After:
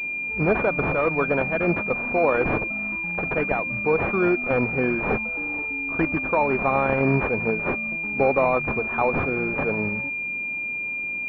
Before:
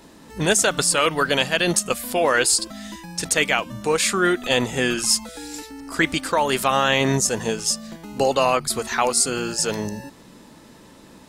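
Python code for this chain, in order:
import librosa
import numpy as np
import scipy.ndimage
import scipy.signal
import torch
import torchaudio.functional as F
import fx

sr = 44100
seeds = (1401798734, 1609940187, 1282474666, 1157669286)

y = fx.rattle_buzz(x, sr, strikes_db=-36.0, level_db=-23.0)
y = fx.pwm(y, sr, carrier_hz=2400.0)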